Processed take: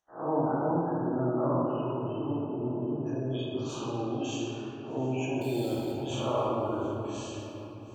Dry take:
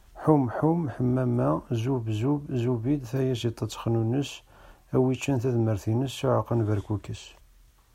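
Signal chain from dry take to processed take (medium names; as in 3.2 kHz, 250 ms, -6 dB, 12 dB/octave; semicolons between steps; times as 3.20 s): spectral blur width 176 ms; high-pass 710 Hz 6 dB/octave; gate -59 dBFS, range -22 dB; spectral gate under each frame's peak -20 dB strong; peaking EQ 6.3 kHz +7 dB 0.39 oct; 5.41–5.92 s: sample-rate reducer 3.9 kHz, jitter 0%; wow and flutter 23 cents; shuffle delay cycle 1207 ms, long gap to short 1.5:1, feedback 35%, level -20 dB; simulated room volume 150 m³, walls hard, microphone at 0.67 m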